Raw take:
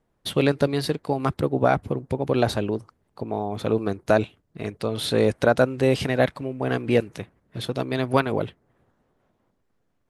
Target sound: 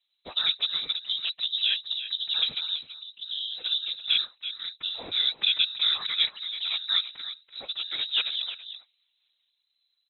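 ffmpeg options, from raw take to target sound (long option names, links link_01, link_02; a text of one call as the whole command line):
ffmpeg -i in.wav -filter_complex "[0:a]asplit=2[link_01][link_02];[link_02]adelay=332.4,volume=-11dB,highshelf=frequency=4000:gain=-7.48[link_03];[link_01][link_03]amix=inputs=2:normalize=0,lowpass=frequency=3400:width_type=q:width=0.5098,lowpass=frequency=3400:width_type=q:width=0.6013,lowpass=frequency=3400:width_type=q:width=0.9,lowpass=frequency=3400:width_type=q:width=2.563,afreqshift=-4000,afftfilt=real='hypot(re,im)*cos(2*PI*random(0))':imag='hypot(re,im)*sin(2*PI*random(1))':win_size=512:overlap=0.75" out.wav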